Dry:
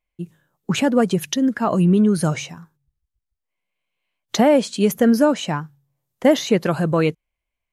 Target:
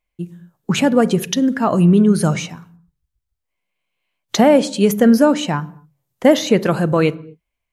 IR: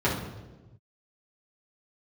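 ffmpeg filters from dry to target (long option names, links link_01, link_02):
-filter_complex "[0:a]asplit=2[link_01][link_02];[1:a]atrim=start_sample=2205,afade=type=out:start_time=0.27:duration=0.01,atrim=end_sample=12348,adelay=33[link_03];[link_02][link_03]afir=irnorm=-1:irlink=0,volume=-31.5dB[link_04];[link_01][link_04]amix=inputs=2:normalize=0,volume=3dB"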